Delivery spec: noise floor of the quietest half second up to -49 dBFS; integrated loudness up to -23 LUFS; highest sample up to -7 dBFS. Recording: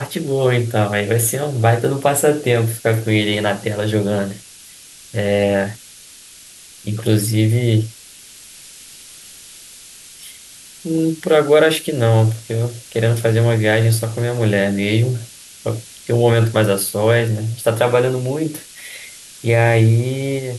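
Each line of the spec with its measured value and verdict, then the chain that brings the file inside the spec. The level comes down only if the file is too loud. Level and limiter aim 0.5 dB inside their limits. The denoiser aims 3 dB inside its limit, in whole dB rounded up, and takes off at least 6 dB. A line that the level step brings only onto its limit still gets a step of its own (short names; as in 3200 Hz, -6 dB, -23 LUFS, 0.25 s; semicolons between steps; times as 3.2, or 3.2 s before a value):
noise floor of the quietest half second -42 dBFS: fail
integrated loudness -17.5 LUFS: fail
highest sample -2.0 dBFS: fail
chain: denoiser 6 dB, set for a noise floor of -42 dBFS; gain -6 dB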